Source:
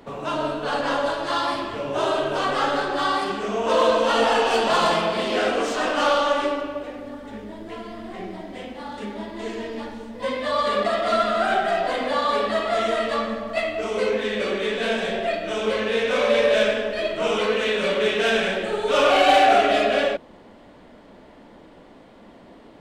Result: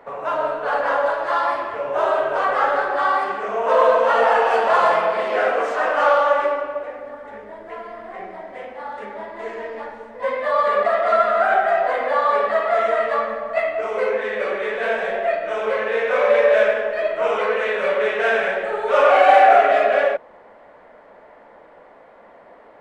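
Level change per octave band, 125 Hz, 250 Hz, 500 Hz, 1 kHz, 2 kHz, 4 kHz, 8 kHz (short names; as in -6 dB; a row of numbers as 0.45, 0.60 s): under -10 dB, -9.5 dB, +3.5 dB, +4.5 dB, +3.5 dB, -9.0 dB, under -10 dB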